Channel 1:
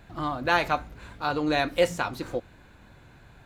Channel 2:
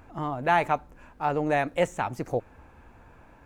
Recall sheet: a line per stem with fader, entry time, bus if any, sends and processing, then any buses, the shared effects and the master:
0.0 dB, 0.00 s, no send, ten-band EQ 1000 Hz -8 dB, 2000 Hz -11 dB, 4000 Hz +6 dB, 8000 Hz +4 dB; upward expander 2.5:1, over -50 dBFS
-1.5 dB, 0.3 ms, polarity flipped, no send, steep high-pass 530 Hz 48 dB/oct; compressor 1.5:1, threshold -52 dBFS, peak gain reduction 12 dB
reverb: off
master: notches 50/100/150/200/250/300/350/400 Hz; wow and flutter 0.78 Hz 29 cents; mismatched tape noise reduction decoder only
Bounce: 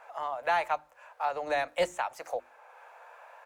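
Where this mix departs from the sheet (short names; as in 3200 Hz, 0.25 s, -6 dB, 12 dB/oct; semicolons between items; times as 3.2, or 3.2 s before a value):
stem 1 0.0 dB -> -6.5 dB; stem 2 -1.5 dB -> +7.0 dB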